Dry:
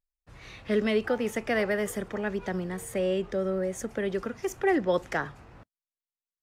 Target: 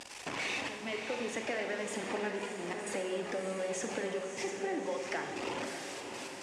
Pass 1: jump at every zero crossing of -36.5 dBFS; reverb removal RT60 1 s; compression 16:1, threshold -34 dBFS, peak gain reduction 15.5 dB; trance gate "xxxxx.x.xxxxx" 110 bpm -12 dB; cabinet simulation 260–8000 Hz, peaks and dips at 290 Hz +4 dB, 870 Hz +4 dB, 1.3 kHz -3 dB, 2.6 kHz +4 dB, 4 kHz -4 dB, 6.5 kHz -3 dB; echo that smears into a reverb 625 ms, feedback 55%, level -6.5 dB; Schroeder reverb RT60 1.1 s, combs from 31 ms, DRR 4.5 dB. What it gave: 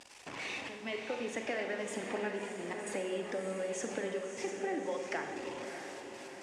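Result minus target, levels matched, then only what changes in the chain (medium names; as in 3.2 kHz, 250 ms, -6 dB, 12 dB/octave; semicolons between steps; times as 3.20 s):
jump at every zero crossing: distortion -7 dB
change: jump at every zero crossing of -28 dBFS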